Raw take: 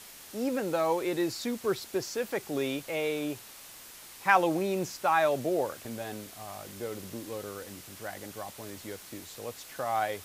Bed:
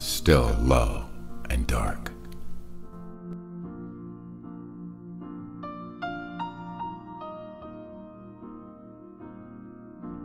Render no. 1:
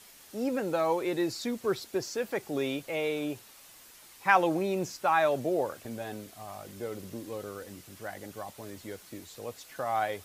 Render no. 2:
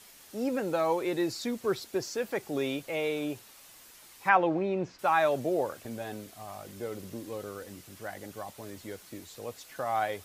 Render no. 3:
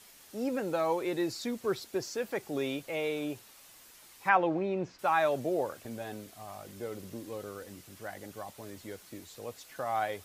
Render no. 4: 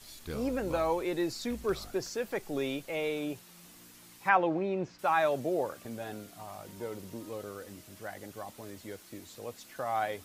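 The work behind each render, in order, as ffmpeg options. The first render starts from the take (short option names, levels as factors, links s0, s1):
-af "afftdn=nr=6:nf=-49"
-filter_complex "[0:a]asettb=1/sr,asplit=3[s0][s1][s2];[s0]atrim=end=4.294[s3];[s1]atrim=start=4.29:end=4.99,asetpts=PTS-STARTPTS,afade=t=in:d=0.004:c=qsin,afade=t=out:st=0.696:d=0.004:c=qsin,lowpass=2600[s4];[s2]atrim=start=4.986[s5];[s3][s4]acrossfade=d=0.004:c1=hsin:c2=qsin[s6];[s6][s5]acrossfade=d=0.004:c1=qsin:c2=hsin"
-af "volume=0.794"
-filter_complex "[1:a]volume=0.0841[s0];[0:a][s0]amix=inputs=2:normalize=0"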